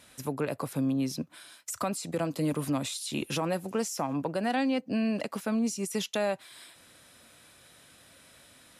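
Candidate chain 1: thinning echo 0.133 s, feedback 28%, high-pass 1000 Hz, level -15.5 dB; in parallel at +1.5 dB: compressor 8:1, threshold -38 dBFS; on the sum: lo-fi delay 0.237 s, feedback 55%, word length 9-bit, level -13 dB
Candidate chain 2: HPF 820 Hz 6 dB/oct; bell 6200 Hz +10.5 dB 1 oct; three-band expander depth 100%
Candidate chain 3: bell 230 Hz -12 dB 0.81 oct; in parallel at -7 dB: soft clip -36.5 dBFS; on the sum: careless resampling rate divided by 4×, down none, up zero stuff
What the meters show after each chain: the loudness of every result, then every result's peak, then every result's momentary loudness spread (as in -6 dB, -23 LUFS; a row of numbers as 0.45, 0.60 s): -28.5, -29.0, -24.5 LUFS; -16.0, -11.5, -7.5 dBFS; 20, 15, 10 LU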